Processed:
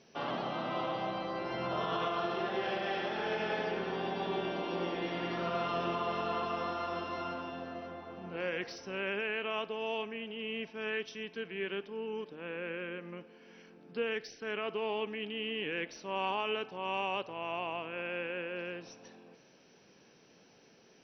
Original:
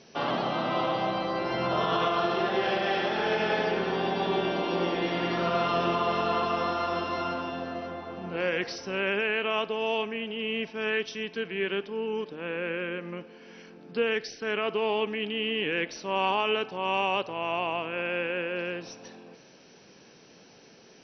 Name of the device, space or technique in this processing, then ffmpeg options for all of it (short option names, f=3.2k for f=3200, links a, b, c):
exciter from parts: -filter_complex "[0:a]asplit=2[a][b];[b]highpass=f=4.2k:w=0.5412,highpass=f=4.2k:w=1.3066,asoftclip=type=tanh:threshold=-36.5dB,volume=-9.5dB[c];[a][c]amix=inputs=2:normalize=0,volume=-7.5dB"